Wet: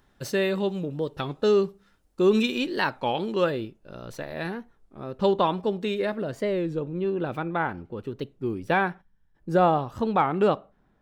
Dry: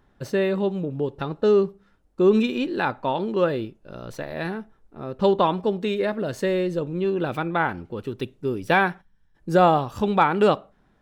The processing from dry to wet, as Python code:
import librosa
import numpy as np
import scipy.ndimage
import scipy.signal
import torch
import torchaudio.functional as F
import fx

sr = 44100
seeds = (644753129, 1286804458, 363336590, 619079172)

y = fx.high_shelf(x, sr, hz=2500.0, db=fx.steps((0.0, 10.5), (3.49, 2.5), (6.23, -6.5)))
y = fx.record_warp(y, sr, rpm=33.33, depth_cents=160.0)
y = F.gain(torch.from_numpy(y), -3.0).numpy()